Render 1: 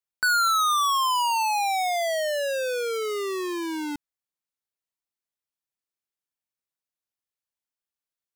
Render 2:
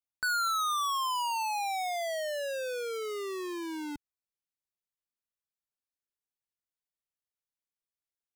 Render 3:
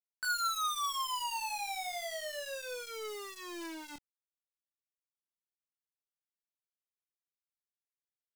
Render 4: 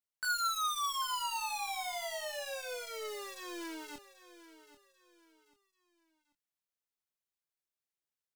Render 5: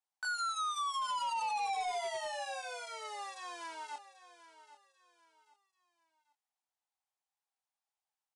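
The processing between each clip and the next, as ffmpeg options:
-af "lowshelf=f=120:g=8.5,volume=-8dB"
-af "flanger=delay=20:depth=5.1:speed=0.37,tiltshelf=f=920:g=-5.5,acrusher=bits=8:dc=4:mix=0:aa=0.000001,volume=-3.5dB"
-af "aecho=1:1:789|1578|2367:0.178|0.0605|0.0206"
-af "highpass=f=800:t=q:w=5.5,asoftclip=type=hard:threshold=-30.5dB,aresample=22050,aresample=44100,volume=-2.5dB"

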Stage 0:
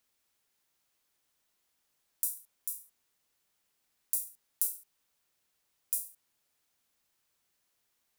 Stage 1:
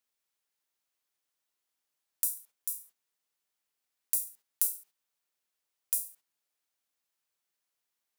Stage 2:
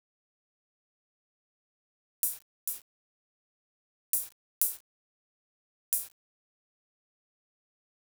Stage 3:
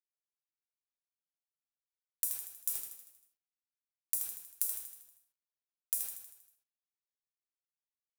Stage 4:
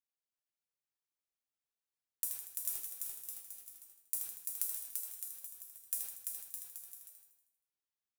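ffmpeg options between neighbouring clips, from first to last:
-af "agate=range=-10dB:threshold=-57dB:ratio=16:detection=peak,lowshelf=f=220:g=-9.5,volume=2.5dB"
-af "aeval=exprs='val(0)*gte(abs(val(0)),0.00891)':c=same"
-af "acompressor=threshold=-32dB:ratio=6,aecho=1:1:79|158|237|316|395|474|553:0.473|0.26|0.143|0.0787|0.0433|0.0238|0.0131,volume=3dB"
-af "acrusher=bits=6:mode=log:mix=0:aa=0.000001,aecho=1:1:340|612|829.6|1004|1143:0.631|0.398|0.251|0.158|0.1,volume=-3.5dB"

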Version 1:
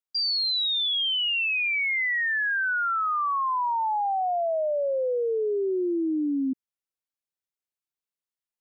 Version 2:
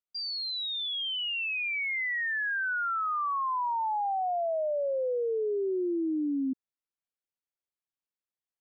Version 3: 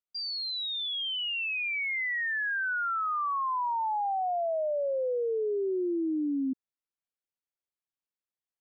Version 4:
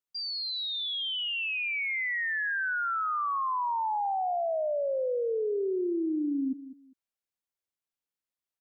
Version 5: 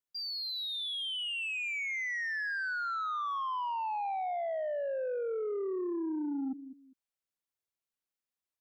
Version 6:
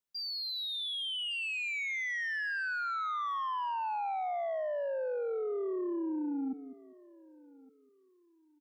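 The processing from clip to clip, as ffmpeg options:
-af "highshelf=f=4.4k:g=-10.5,volume=-3.5dB"
-af anull
-af "aecho=1:1:200|400:0.188|0.0433"
-af "asoftclip=type=tanh:threshold=-27.5dB,volume=-2.5dB"
-af "aecho=1:1:1163|2326:0.0708|0.0219"

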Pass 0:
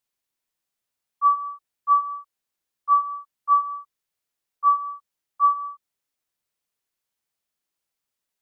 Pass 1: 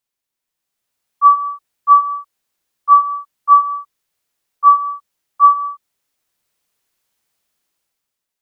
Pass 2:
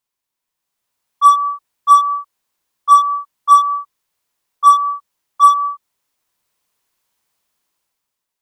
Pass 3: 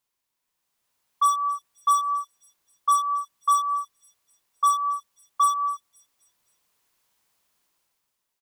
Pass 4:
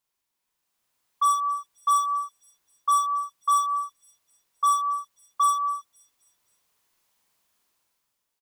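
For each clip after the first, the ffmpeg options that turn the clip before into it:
-af "dynaudnorm=f=140:g=11:m=11dB,volume=1dB"
-filter_complex "[0:a]equalizer=f=1k:t=o:w=0.38:g=6,asplit=2[a][b];[b]aeval=exprs='0.188*(abs(mod(val(0)/0.188+3,4)-2)-1)':c=same,volume=-8dB[c];[a][c]amix=inputs=2:normalize=0,volume=-2.5dB"
-filter_complex "[0:a]acrossover=split=4800[a][b];[a]acompressor=threshold=-20dB:ratio=5[c];[b]aecho=1:1:262|524|786|1048:0.141|0.0664|0.0312|0.0147[d];[c][d]amix=inputs=2:normalize=0"
-filter_complex "[0:a]asplit=2[a][b];[b]adelay=45,volume=-3dB[c];[a][c]amix=inputs=2:normalize=0,volume=-2dB"

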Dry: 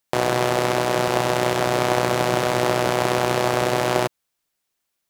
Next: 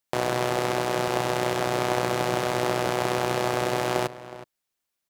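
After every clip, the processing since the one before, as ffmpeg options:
-filter_complex "[0:a]asplit=2[a][b];[b]adelay=367.3,volume=-15dB,highshelf=f=4k:g=-8.27[c];[a][c]amix=inputs=2:normalize=0,volume=-5dB"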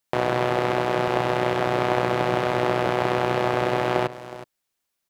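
-filter_complex "[0:a]acrossover=split=3700[a][b];[b]acompressor=threshold=-47dB:ratio=4:attack=1:release=60[c];[a][c]amix=inputs=2:normalize=0,volume=3dB"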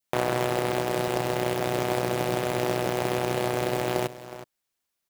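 -af "acrusher=bits=3:mode=log:mix=0:aa=0.000001,adynamicequalizer=threshold=0.0126:dfrequency=1200:dqfactor=1:tfrequency=1200:tqfactor=1:attack=5:release=100:ratio=0.375:range=3:mode=cutabove:tftype=bell,volume=-2.5dB"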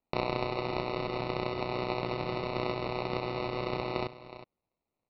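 -af "acrusher=samples=27:mix=1:aa=0.000001,aresample=11025,aresample=44100,volume=-6.5dB"

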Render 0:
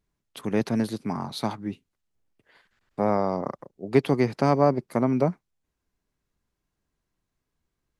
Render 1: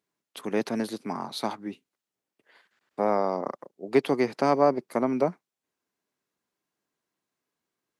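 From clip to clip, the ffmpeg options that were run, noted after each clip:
-af "highpass=270"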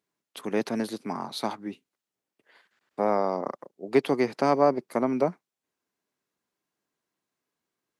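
-af anull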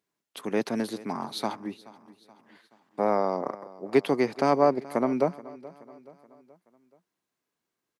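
-af "aecho=1:1:427|854|1281|1708:0.106|0.0519|0.0254|0.0125"

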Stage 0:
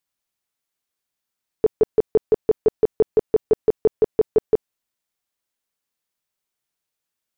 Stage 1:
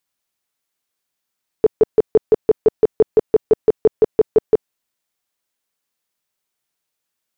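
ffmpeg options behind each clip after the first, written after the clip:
-af "lowshelf=f=120:g=-4.5,volume=4dB"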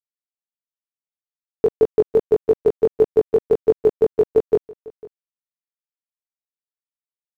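-af "acrusher=bits=7:mix=0:aa=0.000001,flanger=delay=18:depth=2.1:speed=1.6,aecho=1:1:499:0.0841,volume=1.5dB"

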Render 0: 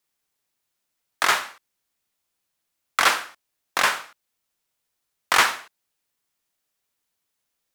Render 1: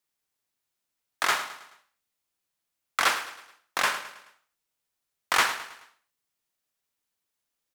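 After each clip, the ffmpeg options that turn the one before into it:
-af "aecho=1:1:107|214|321|428:0.211|0.0972|0.0447|0.0206,volume=-5dB"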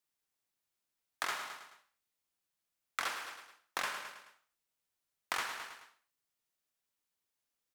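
-af "acompressor=threshold=-28dB:ratio=10,volume=-4.5dB"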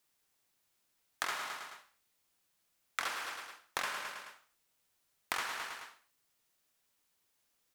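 -af "acompressor=threshold=-50dB:ratio=2,volume=9.5dB"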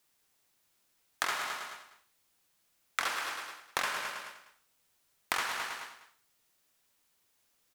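-af "aecho=1:1:198:0.211,volume=4dB"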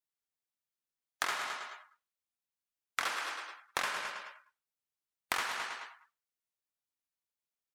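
-af "afftdn=nr=21:nf=-53,volume=-1.5dB"

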